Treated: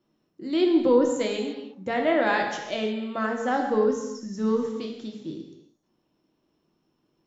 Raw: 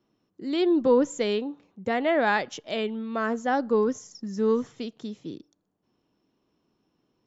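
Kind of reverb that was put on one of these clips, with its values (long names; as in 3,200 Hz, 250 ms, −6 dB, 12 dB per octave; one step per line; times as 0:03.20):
reverb whose tail is shaped and stops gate 370 ms falling, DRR 1.5 dB
level −1.5 dB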